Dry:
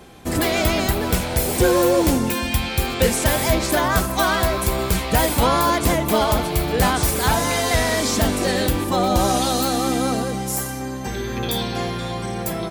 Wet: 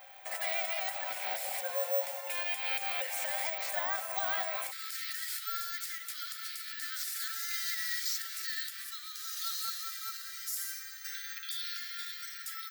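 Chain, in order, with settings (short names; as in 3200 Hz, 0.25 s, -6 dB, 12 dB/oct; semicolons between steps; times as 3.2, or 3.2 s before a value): compressor, threshold -21 dBFS, peak gain reduction 9 dB; limiter -18.5 dBFS, peak gain reduction 8.5 dB; rippled Chebyshev high-pass 530 Hz, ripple 9 dB, from 4.7 s 1300 Hz; careless resampling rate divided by 2×, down none, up zero stuff; gain -2.5 dB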